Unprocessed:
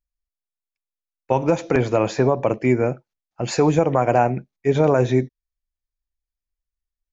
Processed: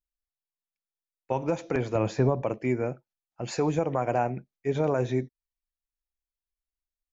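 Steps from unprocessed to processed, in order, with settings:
0:01.95–0:02.42: low-shelf EQ 200 Hz +10.5 dB
level −9 dB

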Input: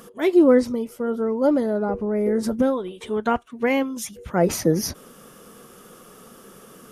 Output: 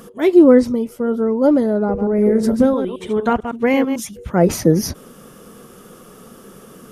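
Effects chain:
0:01.85–0:04.00: delay that plays each chunk backwards 111 ms, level −8 dB
low-shelf EQ 440 Hz +6 dB
level +2 dB

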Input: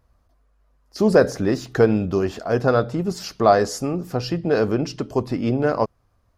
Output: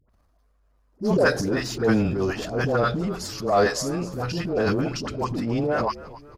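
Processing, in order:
all-pass dispersion highs, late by 97 ms, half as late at 780 Hz
transient designer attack −9 dB, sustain +8 dB
in parallel at −10 dB: gain into a clipping stage and back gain 15 dB
on the sum: echo with shifted repeats 268 ms, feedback 46%, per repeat −79 Hz, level −17.5 dB
level −5 dB

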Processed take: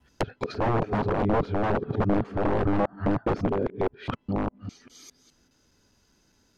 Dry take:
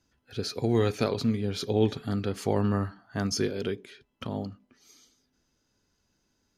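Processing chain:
reversed piece by piece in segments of 204 ms
wrap-around overflow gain 23.5 dB
treble cut that deepens with the level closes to 930 Hz, closed at −31.5 dBFS
level +8.5 dB

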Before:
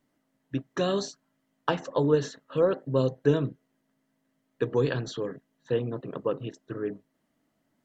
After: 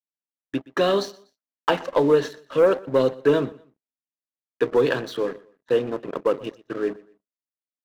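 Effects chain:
Bessel high-pass filter 340 Hz, order 2
downward expander −55 dBFS
low-pass filter 3,800 Hz 12 dB per octave
leveller curve on the samples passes 2
on a send: repeating echo 122 ms, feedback 30%, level −21.5 dB
on the sum: level +1.5 dB

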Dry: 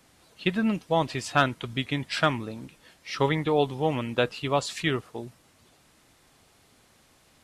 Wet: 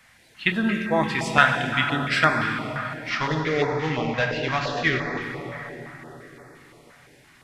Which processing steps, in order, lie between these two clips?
0:03.09–0:05.22: variable-slope delta modulation 32 kbit/s
parametric band 1,900 Hz +12.5 dB 1 octave
dense smooth reverb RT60 4.7 s, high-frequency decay 0.45×, DRR 1 dB
notch on a step sequencer 5.8 Hz 350–3,000 Hz

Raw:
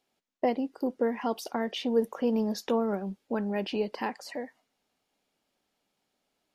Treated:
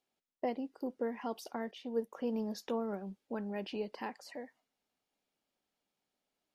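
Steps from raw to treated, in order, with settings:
0:01.71–0:02.13: expander for the loud parts 1.5 to 1, over −38 dBFS
level −8.5 dB

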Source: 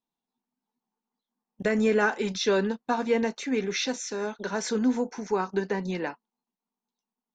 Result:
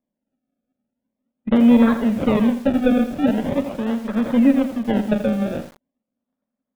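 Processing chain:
lower of the sound and its delayed copy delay 0.57 ms
wrong playback speed 44.1 kHz file played as 48 kHz
sample-and-hold swept by an LFO 30×, swing 100% 0.42 Hz
downsampling to 8,000 Hz
hollow resonant body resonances 230/560 Hz, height 14 dB, ringing for 35 ms
feedback echo at a low word length 83 ms, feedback 35%, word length 6 bits, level −10 dB

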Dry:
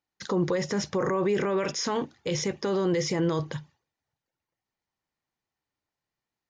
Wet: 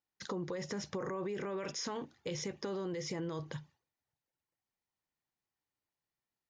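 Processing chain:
downward compressor, threshold −29 dBFS, peak gain reduction 8 dB
level −6.5 dB

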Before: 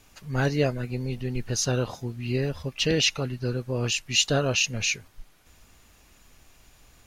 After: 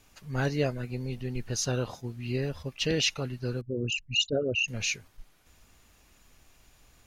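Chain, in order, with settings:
0:03.61–0:04.68: spectral envelope exaggerated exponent 3
level that may rise only so fast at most 510 dB per second
level −4 dB

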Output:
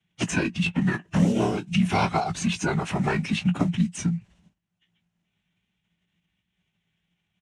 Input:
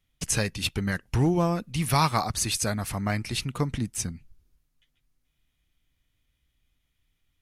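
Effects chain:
noise gate with hold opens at −54 dBFS
high-shelf EQ 2,800 Hz −11 dB
in parallel at −3 dB: downward compressor 12 to 1, threshold −35 dBFS, peak gain reduction 17.5 dB
on the sum: ring modulation 29 Hz
floating-point word with a short mantissa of 4 bits
phase-vocoder pitch shift with formants kept −8.5 semitones
loudspeaker in its box 180–8,200 Hz, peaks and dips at 180 Hz +10 dB, 280 Hz −3 dB, 490 Hz −8 dB, 1,200 Hz −4 dB, 2,900 Hz +5 dB, 4,700 Hz −7 dB
double-tracking delay 18 ms −11 dB
multiband upward and downward compressor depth 70%
level +7.5 dB

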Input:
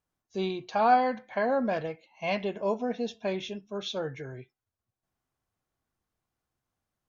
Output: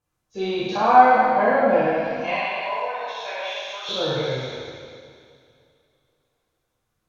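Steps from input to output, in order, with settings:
peak hold with a decay on every bin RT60 2.07 s
treble cut that deepens with the level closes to 2,600 Hz, closed at −23 dBFS
0:02.30–0:03.89: high-pass filter 720 Hz 24 dB per octave
phase shifter 0.71 Hz, delay 4.4 ms, feedback 35%
coupled-rooms reverb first 0.99 s, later 3.3 s, from −20 dB, DRR −6 dB
level −1.5 dB

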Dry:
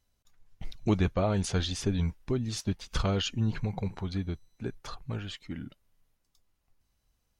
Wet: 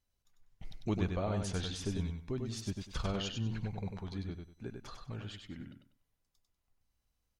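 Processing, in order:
repeating echo 97 ms, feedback 24%, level −5 dB
level −8 dB

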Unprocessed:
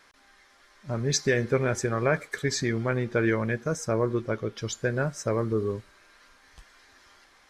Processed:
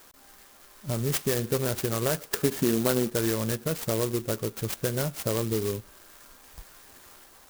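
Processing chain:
0:02.31–0:03.10: drawn EQ curve 120 Hz 0 dB, 190 Hz +10 dB, 1,500 Hz +8 dB, 2,600 Hz −5 dB
downward compressor 2 to 1, threshold −35 dBFS, peak gain reduction 11.5 dB
converter with an unsteady clock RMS 0.13 ms
level +5.5 dB

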